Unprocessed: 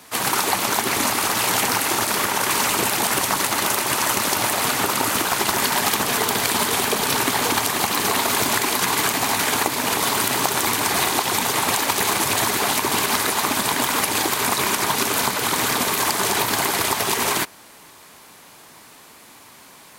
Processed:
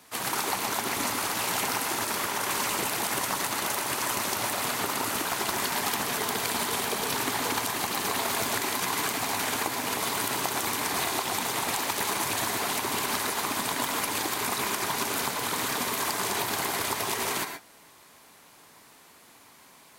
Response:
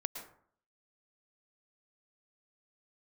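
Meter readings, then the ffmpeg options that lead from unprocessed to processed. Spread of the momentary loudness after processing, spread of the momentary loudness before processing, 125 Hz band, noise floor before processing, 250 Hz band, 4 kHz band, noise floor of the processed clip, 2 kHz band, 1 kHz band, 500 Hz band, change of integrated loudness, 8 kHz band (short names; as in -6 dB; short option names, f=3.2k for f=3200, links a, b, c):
1 LU, 1 LU, -8.5 dB, -46 dBFS, -8.5 dB, -8.5 dB, -55 dBFS, -8.0 dB, -8.0 dB, -8.0 dB, -8.5 dB, -8.5 dB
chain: -filter_complex "[1:a]atrim=start_sample=2205,atrim=end_sample=6615[a];[0:a][a]afir=irnorm=-1:irlink=0,volume=-8dB"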